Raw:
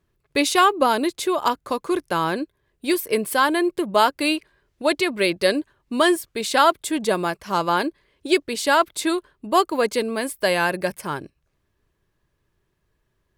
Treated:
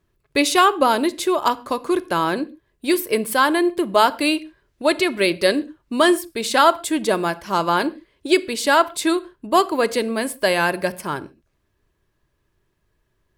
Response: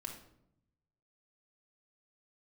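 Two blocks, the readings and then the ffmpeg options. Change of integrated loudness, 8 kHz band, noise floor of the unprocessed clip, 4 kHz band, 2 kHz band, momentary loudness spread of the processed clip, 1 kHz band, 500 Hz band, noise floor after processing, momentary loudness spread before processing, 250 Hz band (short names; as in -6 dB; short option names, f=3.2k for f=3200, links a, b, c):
+2.0 dB, +1.5 dB, -72 dBFS, +2.0 dB, +2.0 dB, 10 LU, +2.0 dB, +2.0 dB, -70 dBFS, 10 LU, +2.5 dB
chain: -filter_complex "[0:a]asplit=2[a][b];[1:a]atrim=start_sample=2205,afade=t=out:st=0.2:d=0.01,atrim=end_sample=9261[c];[b][c]afir=irnorm=-1:irlink=0,volume=-8dB[d];[a][d]amix=inputs=2:normalize=0"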